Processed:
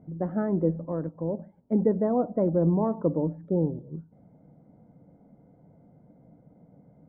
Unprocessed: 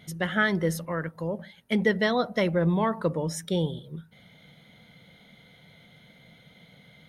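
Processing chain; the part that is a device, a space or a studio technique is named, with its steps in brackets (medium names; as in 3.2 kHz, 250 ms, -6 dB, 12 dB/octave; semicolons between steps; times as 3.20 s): under water (low-pass 850 Hz 24 dB/octave; peaking EQ 290 Hz +10 dB 0.35 oct)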